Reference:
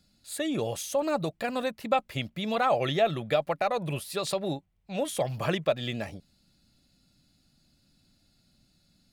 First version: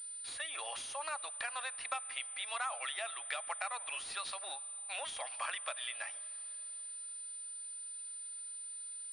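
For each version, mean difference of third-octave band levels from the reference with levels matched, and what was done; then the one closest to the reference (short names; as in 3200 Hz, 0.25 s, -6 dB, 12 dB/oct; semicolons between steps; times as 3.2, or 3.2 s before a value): 13.0 dB: HPF 1000 Hz 24 dB/oct; compressor 4:1, threshold -47 dBFS, peak gain reduction 18.5 dB; digital reverb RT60 3.9 s, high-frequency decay 0.9×, pre-delay 10 ms, DRR 19.5 dB; pulse-width modulation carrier 9000 Hz; gain +8.5 dB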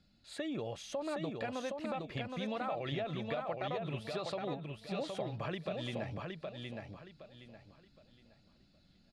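7.0 dB: LPF 3800 Hz 12 dB/oct; limiter -20 dBFS, peak gain reduction 7 dB; compressor 2.5:1, threshold -38 dBFS, peak gain reduction 9.5 dB; feedback echo 0.767 s, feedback 29%, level -4 dB; gain -1.5 dB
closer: second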